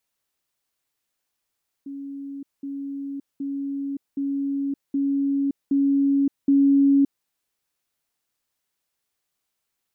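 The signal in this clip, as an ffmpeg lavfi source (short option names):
-f lavfi -i "aevalsrc='pow(10,(-31.5+3*floor(t/0.77))/20)*sin(2*PI*278*t)*clip(min(mod(t,0.77),0.57-mod(t,0.77))/0.005,0,1)':d=5.39:s=44100"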